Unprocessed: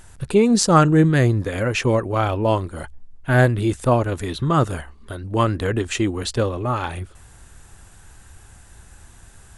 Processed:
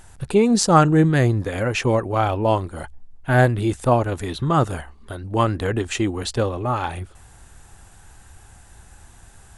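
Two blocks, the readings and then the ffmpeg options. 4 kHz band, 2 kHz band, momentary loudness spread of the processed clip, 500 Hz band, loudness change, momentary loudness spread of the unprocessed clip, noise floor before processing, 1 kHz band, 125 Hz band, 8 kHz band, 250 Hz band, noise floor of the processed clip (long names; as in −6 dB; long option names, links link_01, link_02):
−1.0 dB, −1.0 dB, 18 LU, −0.5 dB, −0.5 dB, 18 LU, −47 dBFS, +1.0 dB, −1.0 dB, −1.0 dB, −1.0 dB, −48 dBFS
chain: -af "equalizer=frequency=790:width=3.6:gain=5,volume=-1dB"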